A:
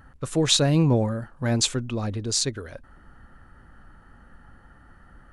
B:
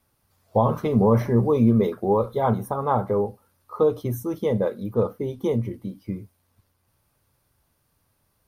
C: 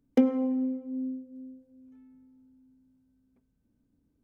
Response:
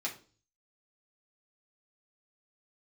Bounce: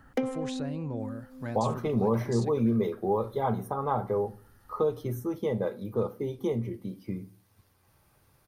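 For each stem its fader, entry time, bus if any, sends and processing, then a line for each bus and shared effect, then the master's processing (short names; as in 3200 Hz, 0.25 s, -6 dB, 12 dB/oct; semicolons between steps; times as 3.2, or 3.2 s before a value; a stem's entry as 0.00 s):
-15.5 dB, 0.00 s, no send, limiter -15.5 dBFS, peak gain reduction 10 dB
-8.5 dB, 1.00 s, send -8.5 dB, dry
+1.0 dB, 0.00 s, send -14.5 dB, HPF 750 Hz 6 dB/oct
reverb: on, RT60 0.40 s, pre-delay 3 ms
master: three-band squash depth 40%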